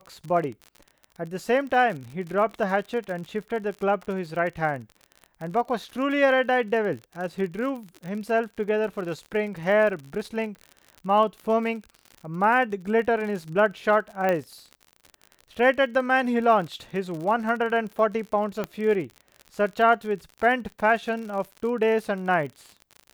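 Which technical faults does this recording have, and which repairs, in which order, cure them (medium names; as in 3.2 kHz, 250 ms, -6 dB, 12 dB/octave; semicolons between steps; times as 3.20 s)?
crackle 55 per s -33 dBFS
14.29 s: pop -13 dBFS
18.64 s: pop -15 dBFS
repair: de-click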